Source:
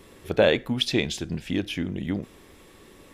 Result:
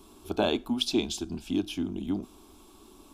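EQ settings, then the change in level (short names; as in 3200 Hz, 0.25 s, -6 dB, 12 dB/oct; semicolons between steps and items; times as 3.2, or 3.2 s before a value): fixed phaser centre 510 Hz, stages 6; 0.0 dB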